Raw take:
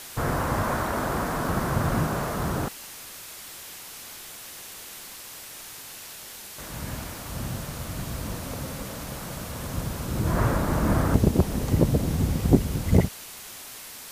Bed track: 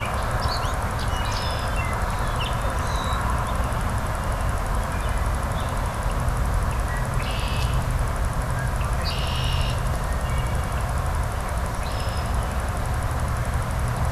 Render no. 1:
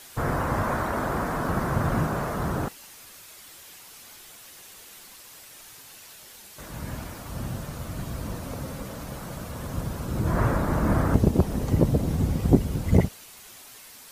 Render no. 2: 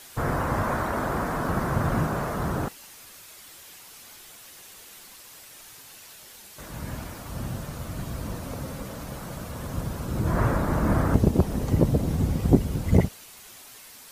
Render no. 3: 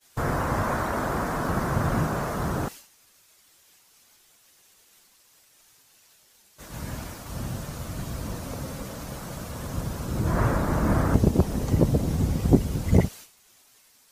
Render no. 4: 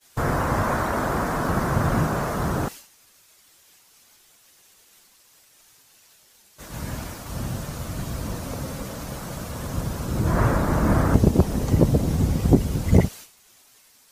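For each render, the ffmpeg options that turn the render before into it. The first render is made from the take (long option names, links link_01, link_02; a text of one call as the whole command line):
ffmpeg -i in.wav -af "afftdn=noise_reduction=7:noise_floor=-42" out.wav
ffmpeg -i in.wav -af anull out.wav
ffmpeg -i in.wav -af "agate=range=-33dB:threshold=-37dB:ratio=3:detection=peak,equalizer=frequency=6200:width=1.2:gain=3.5" out.wav
ffmpeg -i in.wav -af "volume=3dB,alimiter=limit=-2dB:level=0:latency=1" out.wav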